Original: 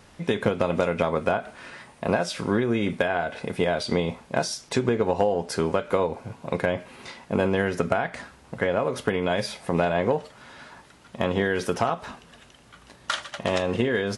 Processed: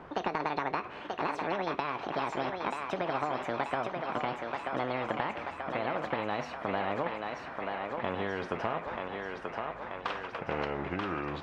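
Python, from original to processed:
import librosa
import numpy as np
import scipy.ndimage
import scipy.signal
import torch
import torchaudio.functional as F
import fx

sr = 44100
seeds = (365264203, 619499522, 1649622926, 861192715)

p1 = fx.speed_glide(x, sr, from_pct=176, to_pct=72)
p2 = scipy.signal.sosfilt(scipy.signal.cheby1(2, 1.0, 940.0, 'lowpass', fs=sr, output='sos'), p1)
p3 = fx.low_shelf(p2, sr, hz=210.0, db=-9.5)
p4 = p3 + fx.echo_thinned(p3, sr, ms=934, feedback_pct=61, hz=540.0, wet_db=-5.0, dry=0)
p5 = fx.spectral_comp(p4, sr, ratio=2.0)
y = F.gain(torch.from_numpy(p5), -5.5).numpy()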